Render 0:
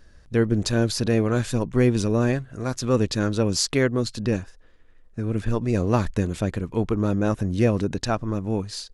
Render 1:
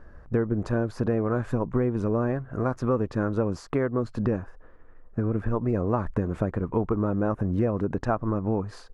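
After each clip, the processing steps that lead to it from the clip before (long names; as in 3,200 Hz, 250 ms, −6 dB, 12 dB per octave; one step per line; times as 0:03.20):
low-shelf EQ 320 Hz −3 dB
downward compressor, threshold −29 dBFS, peak gain reduction 12.5 dB
drawn EQ curve 280 Hz 0 dB, 1,200 Hz +3 dB, 3,800 Hz −23 dB
level +7 dB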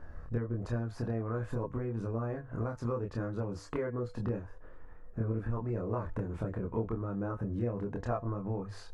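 downward compressor 2 to 1, threshold −40 dBFS, peak gain reduction 11.5 dB
tuned comb filter 98 Hz, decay 0.4 s, harmonics odd, mix 50%
multi-voice chorus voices 4, 0.23 Hz, delay 26 ms, depth 1.3 ms
level +8.5 dB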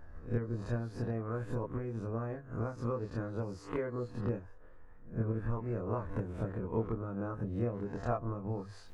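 peak hold with a rise ahead of every peak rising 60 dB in 0.42 s
expander for the loud parts 1.5 to 1, over −41 dBFS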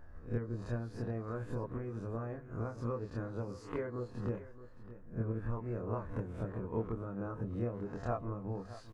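single-tap delay 620 ms −15 dB
level −2.5 dB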